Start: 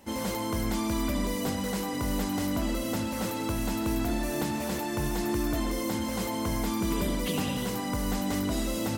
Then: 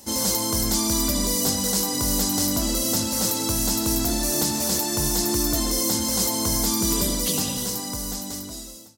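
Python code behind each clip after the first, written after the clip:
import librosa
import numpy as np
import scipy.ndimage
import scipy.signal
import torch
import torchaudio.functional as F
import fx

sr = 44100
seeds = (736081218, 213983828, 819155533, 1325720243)

y = fx.fade_out_tail(x, sr, length_s=2.08)
y = fx.high_shelf_res(y, sr, hz=3600.0, db=12.0, q=1.5)
y = y * 10.0 ** (3.5 / 20.0)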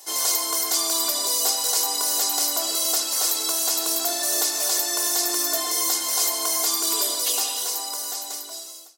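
y = scipy.signal.sosfilt(scipy.signal.butter(4, 500.0, 'highpass', fs=sr, output='sos'), x)
y = y + 0.8 * np.pad(y, (int(2.8 * sr / 1000.0), 0))[:len(y)]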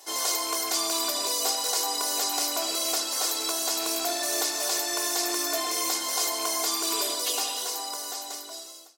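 y = fx.rattle_buzz(x, sr, strikes_db=-47.0, level_db=-31.0)
y = fx.high_shelf(y, sr, hz=6000.0, db=-9.0)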